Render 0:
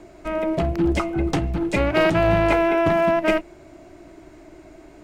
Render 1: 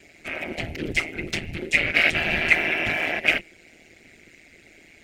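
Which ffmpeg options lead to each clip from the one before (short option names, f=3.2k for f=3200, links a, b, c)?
-af "afftfilt=real='hypot(re,im)*cos(2*PI*random(0))':imag='hypot(re,im)*sin(2*PI*random(1))':win_size=512:overlap=0.75,highshelf=f=1.5k:t=q:w=3:g=12.5,tremolo=f=160:d=0.75,volume=-1dB"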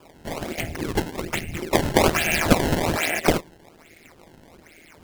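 -af "acrusher=samples=21:mix=1:aa=0.000001:lfo=1:lforange=33.6:lforate=1.2,volume=1.5dB"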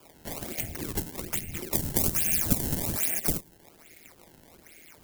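-filter_complex "[0:a]aemphasis=mode=production:type=50kf,acrossover=split=270|5800[a][b][c];[b]acompressor=threshold=-31dB:ratio=5[d];[a][d][c]amix=inputs=3:normalize=0,volume=-6.5dB"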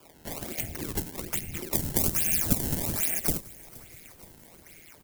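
-filter_complex "[0:a]asplit=6[a][b][c][d][e][f];[b]adelay=472,afreqshift=-55,volume=-21.5dB[g];[c]adelay=944,afreqshift=-110,volume=-25.9dB[h];[d]adelay=1416,afreqshift=-165,volume=-30.4dB[i];[e]adelay=1888,afreqshift=-220,volume=-34.8dB[j];[f]adelay=2360,afreqshift=-275,volume=-39.2dB[k];[a][g][h][i][j][k]amix=inputs=6:normalize=0"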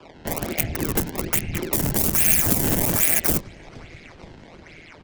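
-filter_complex "[0:a]acrossover=split=140|4700[a][b][c];[a]aeval=exprs='(mod(31.6*val(0)+1,2)-1)/31.6':c=same[d];[c]acrusher=bits=3:mix=0:aa=0.5[e];[d][b][e]amix=inputs=3:normalize=0,alimiter=level_in=11.5dB:limit=-1dB:release=50:level=0:latency=1,volume=-1dB"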